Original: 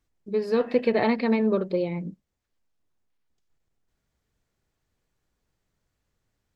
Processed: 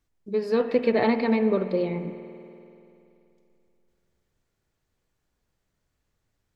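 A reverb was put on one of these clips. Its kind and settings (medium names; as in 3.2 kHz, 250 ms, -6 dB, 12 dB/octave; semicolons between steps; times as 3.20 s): spring tank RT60 2.8 s, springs 48 ms, chirp 70 ms, DRR 10.5 dB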